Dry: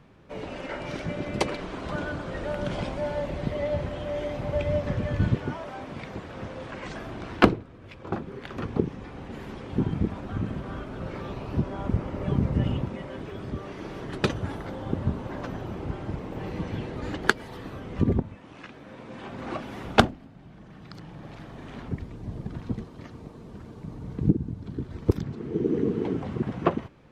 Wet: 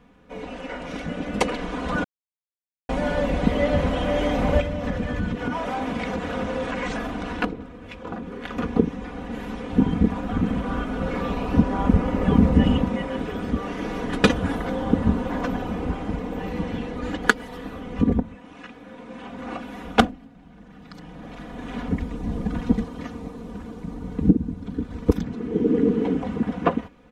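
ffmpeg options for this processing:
ffmpeg -i in.wav -filter_complex "[0:a]asettb=1/sr,asplit=3[link_01][link_02][link_03];[link_01]atrim=end=4.604[link_04];[link_02]atrim=start=4.6:end=8.44,asetpts=PTS-STARTPTS,afade=type=in:duration=0.004:curve=qsin,afade=type=out:start_time=3.836:duration=0.004:curve=qsin,acompressor=threshold=-35dB:ratio=3:attack=3.2:release=140:knee=1:detection=peak[link_05];[link_03]atrim=start=8.436[link_06];[link_04][link_05]acrossfade=duration=0.004:curve1=hsin:curve2=qsin[link_07];[link_07][link_06]acrossfade=duration=0.004:curve1=qsin:curve2=hsin,asplit=3[link_08][link_09][link_10];[link_08]atrim=end=2.04,asetpts=PTS-STARTPTS,afade=type=out:start_time=2.036:duration=0.004:curve=hsin[link_11];[link_09]atrim=start=2.04:end=2.89,asetpts=PTS-STARTPTS,volume=0[link_12];[link_10]atrim=start=2.89,asetpts=PTS-STARTPTS,afade=type=in:duration=0.004:curve=hsin[link_13];[link_11][link_12][link_13]concat=n=3:v=0:a=1,equalizer=frequency=4600:width_type=o:width=0.38:gain=-4.5,aecho=1:1:4.1:0.8,dynaudnorm=framelen=630:gausssize=5:maxgain=11.5dB,volume=-1dB" out.wav

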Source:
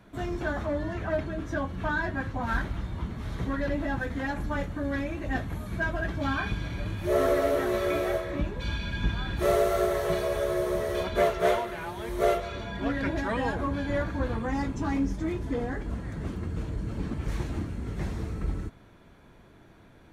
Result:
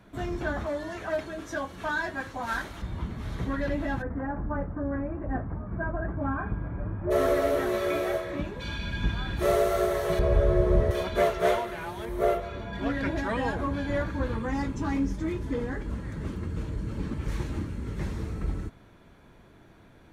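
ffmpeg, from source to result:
ffmpeg -i in.wav -filter_complex "[0:a]asettb=1/sr,asplit=3[link_01][link_02][link_03];[link_01]atrim=end=0.664[link_04];[link_02]atrim=start=0.66:end=2.82,asetpts=PTS-STARTPTS,afade=type=in:duration=0.004:curve=qsin,afade=type=out:start_time=2.156:duration=0.004:curve=qsin,bass=frequency=250:gain=-12,treble=frequency=4000:gain=8[link_05];[link_03]atrim=start=2.816[link_06];[link_04][link_05]acrossfade=duration=0.004:curve1=hsin:curve2=qsin[link_07];[link_07][link_06]acrossfade=duration=0.004:curve1=qsin:curve2=hsin,asplit=3[link_08][link_09][link_10];[link_08]afade=type=out:start_time=4.01:duration=0.02[link_11];[link_09]lowpass=frequency=1400:width=0.5412,lowpass=frequency=1400:width=1.3066,afade=type=in:start_time=4.01:duration=0.02,afade=type=out:start_time=7.1:duration=0.02[link_12];[link_10]afade=type=in:start_time=7.1:duration=0.02[link_13];[link_11][link_12][link_13]amix=inputs=3:normalize=0,asettb=1/sr,asplit=3[link_14][link_15][link_16];[link_14]atrim=end=7.694[link_17];[link_15]atrim=start=7.69:end=8.79,asetpts=PTS-STARTPTS,afade=type=in:duration=0.004:curve=qsin,afade=type=out:start_time=1.096:duration=0.004:curve=qsin,lowshelf=frequency=77:gain=-10[link_18];[link_16]atrim=start=8.786[link_19];[link_17][link_18]acrossfade=duration=0.004:curve1=hsin:curve2=qsin[link_20];[link_20][link_19]acrossfade=duration=0.004:curve1=qsin:curve2=hsin,asettb=1/sr,asplit=3[link_21][link_22][link_23];[link_21]atrim=end=10.194[link_24];[link_22]atrim=start=10.19:end=10.91,asetpts=PTS-STARTPTS,afade=type=in:duration=0.004:curve=qsin,afade=type=out:start_time=0.716:duration=0.004:curve=qsin,aemphasis=mode=reproduction:type=riaa[link_25];[link_23]atrim=start=10.906[link_26];[link_24][link_25]acrossfade=duration=0.004:curve1=hsin:curve2=qsin[link_27];[link_27][link_26]acrossfade=duration=0.004:curve1=qsin:curve2=hsin,asettb=1/sr,asplit=3[link_28][link_29][link_30];[link_28]atrim=end=12.054[link_31];[link_29]atrim=start=12.05:end=12.73,asetpts=PTS-STARTPTS,afade=type=in:duration=0.004:curve=qsin,afade=type=out:start_time=0.676:duration=0.004:curve=qsin,equalizer=frequency=5600:width=0.42:gain=-8[link_32];[link_30]atrim=start=12.726[link_33];[link_31][link_32]acrossfade=duration=0.004:curve1=hsin:curve2=qsin[link_34];[link_34][link_33]acrossfade=duration=0.004:curve1=qsin:curve2=hsin,asettb=1/sr,asplit=3[link_35][link_36][link_37];[link_35]atrim=end=14.064[link_38];[link_36]atrim=start=14.06:end=18.28,asetpts=PTS-STARTPTS,afade=type=in:duration=0.004:curve=qsin,afade=type=out:start_time=4.216:duration=0.004:curve=qsin,bandreject=frequency=710:width=6.3[link_39];[link_37]atrim=start=18.276[link_40];[link_38][link_39]acrossfade=duration=0.004:curve1=hsin:curve2=qsin[link_41];[link_41][link_40]acrossfade=duration=0.004:curve1=qsin:curve2=hsin" out.wav

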